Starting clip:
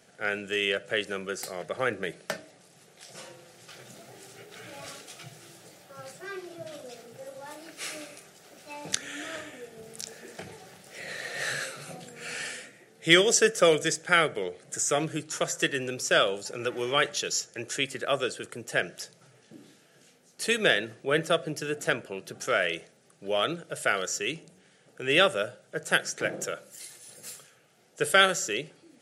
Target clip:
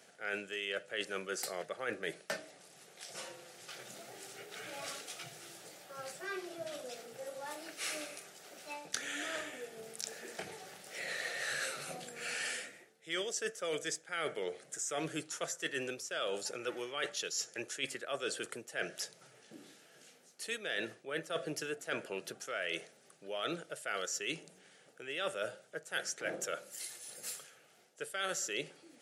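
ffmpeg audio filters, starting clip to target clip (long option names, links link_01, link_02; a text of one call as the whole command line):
ffmpeg -i in.wav -af "highpass=frequency=380:poles=1,areverse,acompressor=threshold=-34dB:ratio=12,areverse" out.wav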